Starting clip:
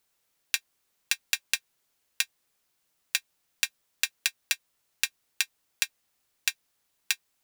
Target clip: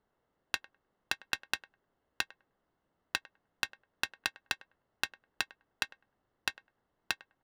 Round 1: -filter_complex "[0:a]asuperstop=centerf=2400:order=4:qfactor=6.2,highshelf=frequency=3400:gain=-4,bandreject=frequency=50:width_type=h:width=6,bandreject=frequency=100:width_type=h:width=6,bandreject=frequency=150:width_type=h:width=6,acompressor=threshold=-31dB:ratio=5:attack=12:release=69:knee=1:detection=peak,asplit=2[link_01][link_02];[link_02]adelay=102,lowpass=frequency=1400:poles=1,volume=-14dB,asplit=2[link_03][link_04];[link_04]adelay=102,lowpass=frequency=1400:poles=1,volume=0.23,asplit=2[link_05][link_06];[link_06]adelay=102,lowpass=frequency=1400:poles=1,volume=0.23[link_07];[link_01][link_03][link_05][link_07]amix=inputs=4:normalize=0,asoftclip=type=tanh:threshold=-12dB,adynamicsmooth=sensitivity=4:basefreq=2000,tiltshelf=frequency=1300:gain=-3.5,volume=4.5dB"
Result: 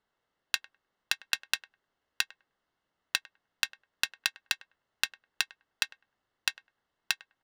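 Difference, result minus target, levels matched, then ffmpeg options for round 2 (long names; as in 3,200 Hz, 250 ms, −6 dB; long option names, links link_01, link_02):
1,000 Hz band −6.0 dB
-filter_complex "[0:a]asuperstop=centerf=2400:order=4:qfactor=6.2,highshelf=frequency=3400:gain=-4,bandreject=frequency=50:width_type=h:width=6,bandreject=frequency=100:width_type=h:width=6,bandreject=frequency=150:width_type=h:width=6,acompressor=threshold=-31dB:ratio=5:attack=12:release=69:knee=1:detection=peak,asplit=2[link_01][link_02];[link_02]adelay=102,lowpass=frequency=1400:poles=1,volume=-14dB,asplit=2[link_03][link_04];[link_04]adelay=102,lowpass=frequency=1400:poles=1,volume=0.23,asplit=2[link_05][link_06];[link_06]adelay=102,lowpass=frequency=1400:poles=1,volume=0.23[link_07];[link_01][link_03][link_05][link_07]amix=inputs=4:normalize=0,asoftclip=type=tanh:threshold=-12dB,adynamicsmooth=sensitivity=4:basefreq=2000,tiltshelf=frequency=1300:gain=4,volume=4.5dB"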